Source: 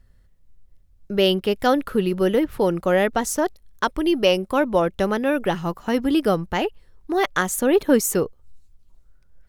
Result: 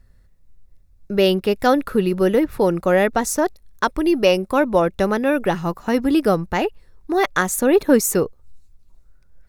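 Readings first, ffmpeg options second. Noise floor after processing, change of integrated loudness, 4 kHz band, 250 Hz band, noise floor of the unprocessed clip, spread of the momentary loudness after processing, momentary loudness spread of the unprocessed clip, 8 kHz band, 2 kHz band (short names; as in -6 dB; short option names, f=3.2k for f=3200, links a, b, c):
-52 dBFS, +2.5 dB, -1.5 dB, +2.5 dB, -55 dBFS, 7 LU, 7 LU, +2.5 dB, +2.5 dB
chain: -af "bandreject=f=3.1k:w=7.4,volume=2.5dB"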